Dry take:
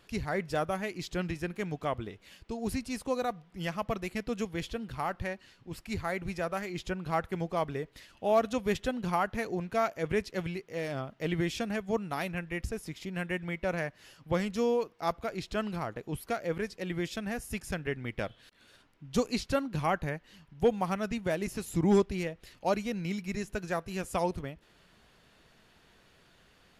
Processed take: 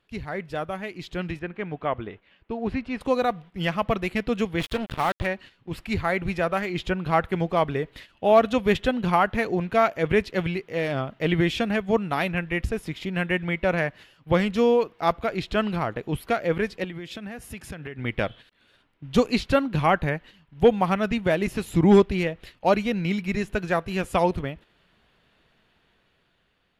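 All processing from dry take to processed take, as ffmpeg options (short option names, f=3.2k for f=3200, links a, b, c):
-filter_complex "[0:a]asettb=1/sr,asplit=3[a][b][c];[a]atrim=end=1.394[d];[b]atrim=start=1.39:end=3.01,asetpts=PTS-STARTPTS,afade=t=in:d=0.004:c=qsin,afade=t=out:st=1.616:d=0.004:c=qsin,lowpass=2.4k,lowshelf=f=250:g=-5.5[e];[c]atrim=start=3.006[f];[d][e]acrossfade=d=0.004:c1=hsin:c2=qsin[g];[g][f]acrossfade=d=0.004:c1=qsin:c2=hsin,asettb=1/sr,asplit=3[h][i][j];[h]atrim=end=4.604[k];[i]atrim=start=4.6:end=5.26,asetpts=PTS-STARTPTS,afade=t=in:d=0.004:c=qsin,afade=t=out:st=0.656:d=0.004:c=qsin,highshelf=f=8.3k:g=4.5,acrusher=bits=5:mix=0:aa=0.5[l];[j]atrim=start=5.256[m];[k][l]acrossfade=d=0.004:c1=hsin:c2=qsin[n];[n][m]acrossfade=d=0.004:c1=qsin:c2=hsin,asettb=1/sr,asplit=3[o][p][q];[o]atrim=end=16.844[r];[p]atrim=start=16.84:end=17.99,asetpts=PTS-STARTPTS,afade=t=in:d=0.004:c=qsin,afade=t=out:st=1.146:d=0.004:c=qsin,highpass=62,acompressor=threshold=-40dB:ratio=16:attack=3.2:release=140:knee=1:detection=peak[s];[q]atrim=start=17.986[t];[r][s]acrossfade=d=0.004:c1=hsin:c2=qsin[u];[u][t]acrossfade=d=0.004:c1=qsin:c2=hsin,agate=range=-10dB:threshold=-51dB:ratio=16:detection=peak,highshelf=f=4.4k:t=q:w=1.5:g=-7,dynaudnorm=f=470:g=7:m=8.5dB"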